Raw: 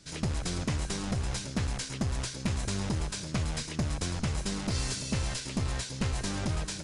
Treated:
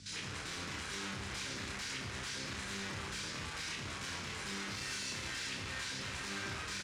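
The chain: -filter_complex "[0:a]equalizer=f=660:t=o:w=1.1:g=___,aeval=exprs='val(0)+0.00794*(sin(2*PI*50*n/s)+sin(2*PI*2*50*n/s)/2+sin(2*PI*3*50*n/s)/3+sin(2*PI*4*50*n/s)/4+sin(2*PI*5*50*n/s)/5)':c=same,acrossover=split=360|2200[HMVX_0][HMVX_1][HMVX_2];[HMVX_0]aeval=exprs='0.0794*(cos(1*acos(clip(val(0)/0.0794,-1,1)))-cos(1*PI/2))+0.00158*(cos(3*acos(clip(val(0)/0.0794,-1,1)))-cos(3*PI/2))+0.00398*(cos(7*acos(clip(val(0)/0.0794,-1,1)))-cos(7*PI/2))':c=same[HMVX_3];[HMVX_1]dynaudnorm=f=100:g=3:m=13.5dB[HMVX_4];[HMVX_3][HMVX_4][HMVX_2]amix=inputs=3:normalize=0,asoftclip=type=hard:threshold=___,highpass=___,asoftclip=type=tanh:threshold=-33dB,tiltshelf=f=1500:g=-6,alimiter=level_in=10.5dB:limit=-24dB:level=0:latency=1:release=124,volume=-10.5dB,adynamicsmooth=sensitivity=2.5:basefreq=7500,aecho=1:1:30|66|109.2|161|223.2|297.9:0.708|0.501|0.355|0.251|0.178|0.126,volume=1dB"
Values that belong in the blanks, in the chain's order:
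-13, -29dB, 78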